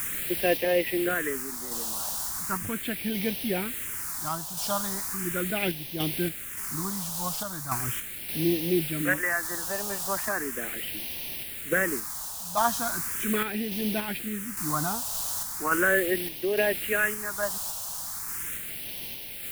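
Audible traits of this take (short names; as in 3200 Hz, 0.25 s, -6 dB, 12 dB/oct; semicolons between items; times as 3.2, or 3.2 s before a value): a quantiser's noise floor 6-bit, dither triangular; random-step tremolo 3.5 Hz; phasing stages 4, 0.38 Hz, lowest notch 350–1300 Hz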